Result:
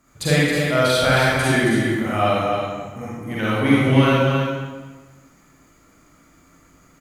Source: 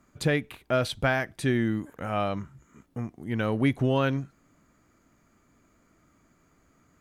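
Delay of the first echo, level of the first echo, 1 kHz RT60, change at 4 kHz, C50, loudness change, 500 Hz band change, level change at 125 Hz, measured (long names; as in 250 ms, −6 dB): 271 ms, −6.0 dB, 1.3 s, +13.0 dB, −6.0 dB, +9.5 dB, +9.0 dB, +9.0 dB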